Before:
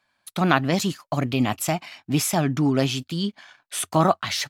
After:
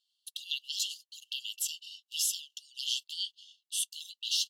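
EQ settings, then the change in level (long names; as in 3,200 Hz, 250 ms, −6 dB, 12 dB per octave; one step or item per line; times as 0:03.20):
linear-phase brick-wall high-pass 2,700 Hz
high-shelf EQ 6,800 Hz −6.5 dB
0.0 dB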